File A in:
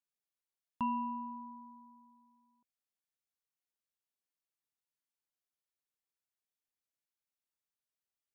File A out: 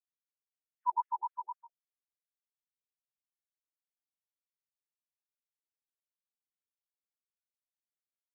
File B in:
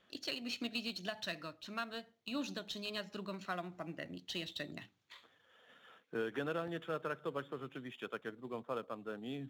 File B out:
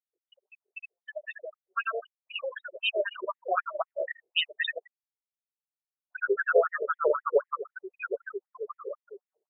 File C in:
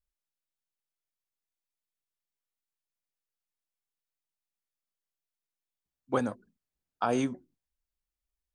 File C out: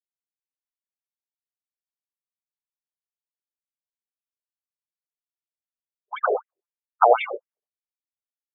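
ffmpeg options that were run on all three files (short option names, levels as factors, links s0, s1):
-filter_complex "[0:a]asplit=7[s0][s1][s2][s3][s4][s5][s6];[s1]adelay=81,afreqshift=-48,volume=0.708[s7];[s2]adelay=162,afreqshift=-96,volume=0.331[s8];[s3]adelay=243,afreqshift=-144,volume=0.157[s9];[s4]adelay=324,afreqshift=-192,volume=0.0733[s10];[s5]adelay=405,afreqshift=-240,volume=0.0347[s11];[s6]adelay=486,afreqshift=-288,volume=0.0162[s12];[s0][s7][s8][s9][s10][s11][s12]amix=inputs=7:normalize=0,dynaudnorm=f=220:g=17:m=4.47,afftfilt=real='re*gte(hypot(re,im),0.0708)':imag='im*gte(hypot(re,im),0.0708)':win_size=1024:overlap=0.75,afftfilt=real='re*between(b*sr/1024,500*pow(2700/500,0.5+0.5*sin(2*PI*3.9*pts/sr))/1.41,500*pow(2700/500,0.5+0.5*sin(2*PI*3.9*pts/sr))*1.41)':imag='im*between(b*sr/1024,500*pow(2700/500,0.5+0.5*sin(2*PI*3.9*pts/sr))/1.41,500*pow(2700/500,0.5+0.5*sin(2*PI*3.9*pts/sr))*1.41)':win_size=1024:overlap=0.75,volume=2"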